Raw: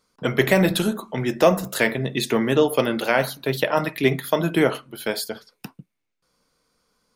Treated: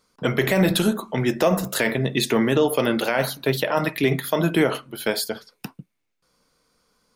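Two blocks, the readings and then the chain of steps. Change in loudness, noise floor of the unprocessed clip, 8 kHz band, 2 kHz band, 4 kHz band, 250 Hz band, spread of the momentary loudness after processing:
0.0 dB, -78 dBFS, +2.0 dB, -1.0 dB, +1.0 dB, +1.0 dB, 8 LU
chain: limiter -11.5 dBFS, peak gain reduction 7.5 dB; gain +2.5 dB

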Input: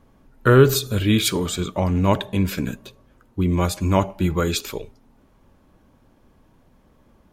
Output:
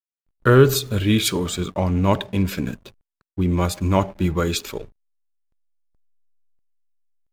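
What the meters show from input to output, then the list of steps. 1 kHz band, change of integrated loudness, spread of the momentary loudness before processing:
0.0 dB, 0.0 dB, 15 LU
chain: backlash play -38.5 dBFS

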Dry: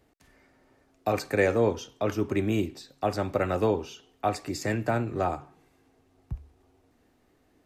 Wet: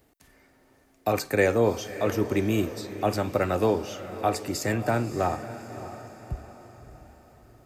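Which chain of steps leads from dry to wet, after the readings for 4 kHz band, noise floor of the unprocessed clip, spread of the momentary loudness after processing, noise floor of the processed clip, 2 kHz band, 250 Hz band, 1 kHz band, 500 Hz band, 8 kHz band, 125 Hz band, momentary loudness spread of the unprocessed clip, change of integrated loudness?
+3.5 dB, -66 dBFS, 16 LU, -62 dBFS, +2.0 dB, +2.0 dB, +2.0 dB, +2.0 dB, +5.5 dB, +1.5 dB, 15 LU, +1.5 dB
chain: high shelf 9600 Hz +12 dB; diffused feedback echo 0.605 s, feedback 46%, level -12.5 dB; gain +1.5 dB

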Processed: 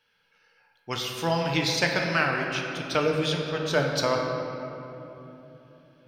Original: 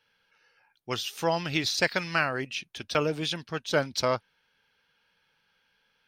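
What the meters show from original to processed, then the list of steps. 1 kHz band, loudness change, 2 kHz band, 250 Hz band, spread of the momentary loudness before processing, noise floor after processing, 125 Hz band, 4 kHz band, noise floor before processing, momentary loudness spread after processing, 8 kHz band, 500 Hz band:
+2.5 dB, +2.5 dB, +2.5 dB, +4.0 dB, 8 LU, -69 dBFS, +5.5 dB, +1.5 dB, -72 dBFS, 15 LU, +1.0 dB, +3.5 dB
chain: shoebox room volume 170 m³, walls hard, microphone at 0.41 m

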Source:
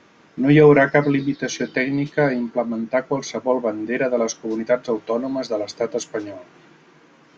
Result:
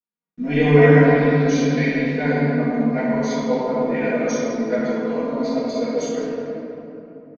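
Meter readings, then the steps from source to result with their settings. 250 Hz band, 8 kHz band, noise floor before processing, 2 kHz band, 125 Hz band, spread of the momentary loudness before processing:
+2.0 dB, n/a, -53 dBFS, 0.0 dB, +5.0 dB, 13 LU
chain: comb 4.2 ms, depth 59%; gate -44 dBFS, range -44 dB; bell 160 Hz +11.5 dB 0.41 oct; shoebox room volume 150 m³, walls hard, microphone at 1.9 m; dynamic EQ 3500 Hz, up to +4 dB, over -22 dBFS, Q 0.86; gain -15.5 dB

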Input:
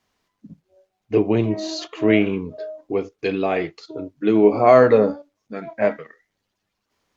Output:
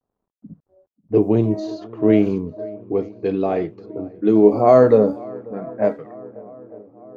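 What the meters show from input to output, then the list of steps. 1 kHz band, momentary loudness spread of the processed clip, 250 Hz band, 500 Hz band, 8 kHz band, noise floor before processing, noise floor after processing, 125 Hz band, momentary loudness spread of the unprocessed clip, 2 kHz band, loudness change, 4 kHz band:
-1.0 dB, 20 LU, +2.5 dB, +1.0 dB, n/a, -78 dBFS, -82 dBFS, +3.0 dB, 21 LU, -9.5 dB, +1.5 dB, under -10 dB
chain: bit-crush 11-bit; bell 2400 Hz -14.5 dB 1.9 oct; swung echo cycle 0.899 s, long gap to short 1.5:1, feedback 59%, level -23 dB; low-pass opened by the level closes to 970 Hz, open at -15 dBFS; gain +3 dB

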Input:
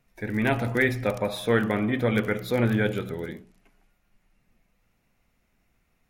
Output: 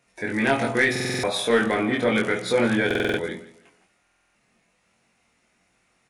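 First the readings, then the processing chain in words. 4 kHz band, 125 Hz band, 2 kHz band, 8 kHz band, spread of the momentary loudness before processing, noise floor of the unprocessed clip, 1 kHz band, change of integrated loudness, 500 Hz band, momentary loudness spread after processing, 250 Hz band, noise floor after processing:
+8.5 dB, -5.0 dB, +5.0 dB, +11.0 dB, 10 LU, -71 dBFS, +4.5 dB, +3.0 dB, +3.5 dB, 7 LU, +1.5 dB, -68 dBFS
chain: HPF 350 Hz 6 dB/oct; high shelf 8300 Hz +7.5 dB; in parallel at -1 dB: limiter -20 dBFS, peak gain reduction 10.5 dB; on the sum: soft clip -10 dBFS, distortion -23 dB; doubler 22 ms -2 dB; on a send: feedback echo 0.166 s, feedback 29%, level -17 dB; on the sum: downsampling 22050 Hz; stuck buffer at 0.91/2.86/4.02, samples 2048, times 6

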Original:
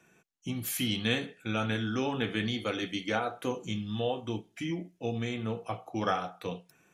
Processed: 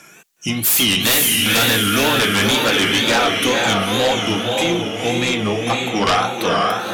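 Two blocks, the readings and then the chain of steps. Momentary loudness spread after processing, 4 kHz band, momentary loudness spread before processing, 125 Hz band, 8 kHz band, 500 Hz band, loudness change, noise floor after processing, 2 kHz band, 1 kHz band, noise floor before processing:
6 LU, +21.0 dB, 8 LU, +10.5 dB, +23.5 dB, +14.5 dB, +17.0 dB, -45 dBFS, +19.0 dB, +17.0 dB, -67 dBFS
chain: tilt +2.5 dB/oct; diffused feedback echo 0.505 s, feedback 45%, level -3.5 dB; wow and flutter 120 cents; sine folder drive 14 dB, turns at -11 dBFS

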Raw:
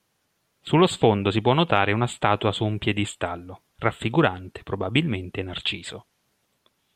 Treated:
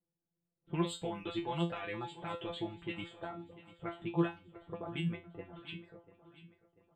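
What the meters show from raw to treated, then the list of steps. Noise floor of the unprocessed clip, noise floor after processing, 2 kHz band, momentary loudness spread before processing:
-72 dBFS, under -85 dBFS, -18.5 dB, 14 LU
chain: low-pass opened by the level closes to 400 Hz, open at -15 dBFS; reverb removal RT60 0.53 s; limiter -14.5 dBFS, peak gain reduction 9.5 dB; resonator 170 Hz, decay 0.24 s, harmonics all, mix 100%; on a send: feedback echo 0.692 s, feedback 47%, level -17 dB; on the sum: gain -1 dB

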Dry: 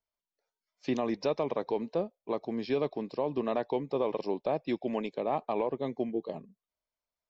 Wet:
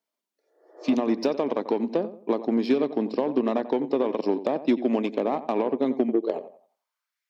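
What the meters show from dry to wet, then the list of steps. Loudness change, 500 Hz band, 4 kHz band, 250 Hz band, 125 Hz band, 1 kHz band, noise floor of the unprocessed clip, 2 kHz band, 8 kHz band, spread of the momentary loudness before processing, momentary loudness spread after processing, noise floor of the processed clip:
+7.0 dB, +6.0 dB, +5.0 dB, +10.0 dB, +0.5 dB, +4.0 dB, under -85 dBFS, +5.0 dB, n/a, 4 LU, 4 LU, under -85 dBFS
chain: compressor 10:1, threshold -31 dBFS, peak gain reduction 8 dB; spectral repair 0.44–0.92, 300–2000 Hz both; on a send: darkening echo 90 ms, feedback 34%, low-pass 2100 Hz, level -11 dB; on the sum: added harmonics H 5 -20 dB, 7 -20 dB, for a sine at -21 dBFS; high-pass sweep 250 Hz -> 1900 Hz, 6.09–7.22; gain +7.5 dB

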